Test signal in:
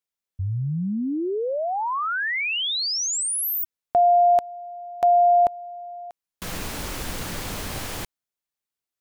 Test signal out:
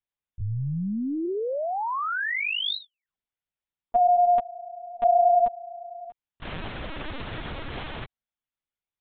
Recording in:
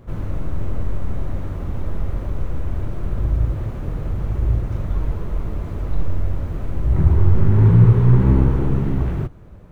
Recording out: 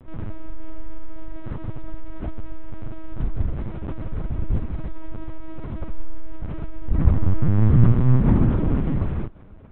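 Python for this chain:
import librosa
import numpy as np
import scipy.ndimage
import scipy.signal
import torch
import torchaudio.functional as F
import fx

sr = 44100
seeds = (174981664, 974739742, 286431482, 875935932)

y = fx.lpc_vocoder(x, sr, seeds[0], excitation='pitch_kept', order=10)
y = y * 10.0 ** (-2.5 / 20.0)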